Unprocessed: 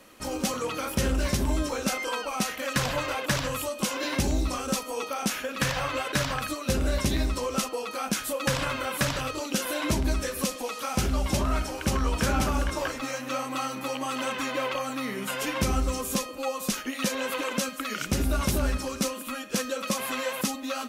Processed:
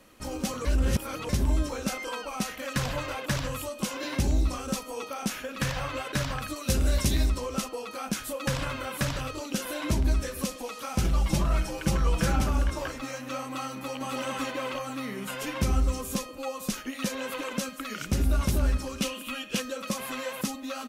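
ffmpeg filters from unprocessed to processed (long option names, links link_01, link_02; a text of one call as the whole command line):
ffmpeg -i in.wav -filter_complex "[0:a]asettb=1/sr,asplit=3[link_01][link_02][link_03];[link_01]atrim=end=6.564[link_04];[link_02]atrim=start=6.56:end=7.3,asetpts=PTS-STARTPTS,afade=type=in:duration=0.004:curve=qsin,afade=type=out:start_time=0.736:duration=0.004:curve=qsin,highshelf=frequency=3500:gain=8.5[link_05];[link_03]atrim=start=7.296[link_06];[link_04][link_05]acrossfade=duration=0.004:curve1=hsin:curve2=qsin[link_07];[link_07][link_06]acrossfade=duration=0.004:curve1=qsin:curve2=hsin,asettb=1/sr,asplit=3[link_08][link_09][link_10];[link_08]atrim=end=11.044[link_11];[link_09]atrim=start=11.04:end=12.36,asetpts=PTS-STARTPTS,afade=type=in:duration=0.004:curve=qsin,afade=type=out:start_time=1.316:duration=0.004:curve=qsin,aecho=1:1:6:0.81,atrim=end_sample=58212[link_12];[link_10]atrim=start=12.356[link_13];[link_11][link_12]acrossfade=duration=0.004:curve1=hsin:curve2=qsin[link_14];[link_14][link_13]acrossfade=duration=0.004:curve1=qsin:curve2=hsin,asplit=2[link_15][link_16];[link_16]afade=type=in:start_time=13.72:duration=0.01,afade=type=out:start_time=14.22:duration=0.01,aecho=0:1:280|560|840|1120|1400|1680|1960:0.794328|0.397164|0.198582|0.099291|0.0496455|0.0248228|0.0124114[link_17];[link_15][link_17]amix=inputs=2:normalize=0,asettb=1/sr,asplit=3[link_18][link_19][link_20];[link_18]atrim=end=18.984[link_21];[link_19]atrim=start=18.98:end=19.6,asetpts=PTS-STARTPTS,afade=type=in:duration=0.004:curve=qsin,afade=type=out:start_time=0.616:duration=0.004:curve=qsin,equalizer=frequency=2900:width_type=o:width=0.64:gain=11.5[link_22];[link_20]atrim=start=19.596[link_23];[link_21][link_22]acrossfade=duration=0.004:curve1=hsin:curve2=qsin[link_24];[link_24][link_23]acrossfade=duration=0.004:curve1=qsin:curve2=hsin,asplit=3[link_25][link_26][link_27];[link_25]atrim=end=0.652[link_28];[link_26]atrim=start=0.648:end=1.292,asetpts=PTS-STARTPTS,areverse[link_29];[link_27]atrim=start=1.288[link_30];[link_28][link_29]acrossfade=duration=0.004:curve1=hsin:curve2=hsin[link_31];[link_31][link_30]acrossfade=duration=0.004:curve1=hsin:curve2=hsin,lowshelf=frequency=160:gain=8.5,volume=-4.5dB" out.wav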